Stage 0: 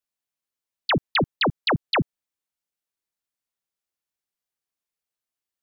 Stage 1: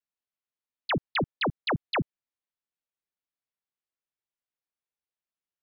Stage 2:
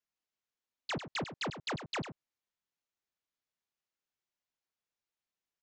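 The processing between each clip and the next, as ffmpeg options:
-af "lowpass=3.7k,volume=-5.5dB"
-af "aresample=16000,asoftclip=type=tanh:threshold=-35dB,aresample=44100,aecho=1:1:99:0.299,volume=1dB"

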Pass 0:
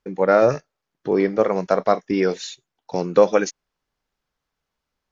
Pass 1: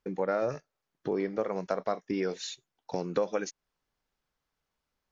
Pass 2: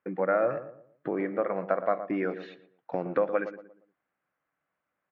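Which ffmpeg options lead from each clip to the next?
-af "acompressor=threshold=-27dB:ratio=2.5,volume=-3.5dB"
-filter_complex "[0:a]highpass=220,equalizer=f=230:t=q:w=4:g=-7,equalizer=f=420:t=q:w=4:g=-10,equalizer=f=900:t=q:w=4:g=-7,lowpass=f=2.1k:w=0.5412,lowpass=f=2.1k:w=1.3066,asplit=2[a][b];[b]adelay=117,lowpass=f=1.1k:p=1,volume=-10dB,asplit=2[c][d];[d]adelay=117,lowpass=f=1.1k:p=1,volume=0.38,asplit=2[e][f];[f]adelay=117,lowpass=f=1.1k:p=1,volume=0.38,asplit=2[g][h];[h]adelay=117,lowpass=f=1.1k:p=1,volume=0.38[i];[c][e][g][i]amix=inputs=4:normalize=0[j];[a][j]amix=inputs=2:normalize=0,volume=6.5dB"

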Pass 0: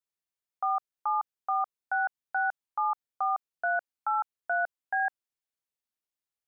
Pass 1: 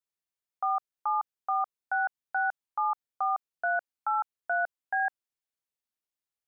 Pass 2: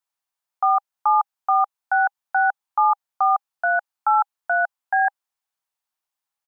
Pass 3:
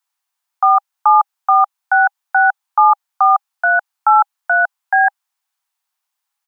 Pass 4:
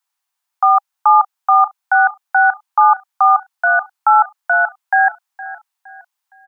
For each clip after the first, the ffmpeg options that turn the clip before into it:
-af anull
-af "firequalizer=gain_entry='entry(450,0);entry(810,14);entry(2000,7)':delay=0.05:min_phase=1,volume=-2dB"
-af "highpass=f=740:w=0.5412,highpass=f=740:w=1.3066,volume=8dB"
-af "aecho=1:1:464|928|1392:0.141|0.0494|0.0173"

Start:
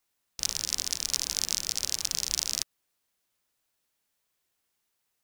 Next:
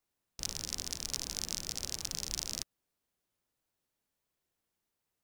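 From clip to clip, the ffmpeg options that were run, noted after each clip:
-af "tiltshelf=f=790:g=5,volume=-3.5dB"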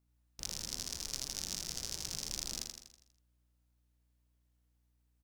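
-filter_complex "[0:a]aeval=exprs='val(0)+0.000282*(sin(2*PI*60*n/s)+sin(2*PI*2*60*n/s)/2+sin(2*PI*3*60*n/s)/3+sin(2*PI*4*60*n/s)/4+sin(2*PI*5*60*n/s)/5)':c=same,asplit=2[a][b];[b]aecho=0:1:81|162|243|324|405|486|567:0.631|0.328|0.171|0.0887|0.0461|0.024|0.0125[c];[a][c]amix=inputs=2:normalize=0,volume=-4dB"

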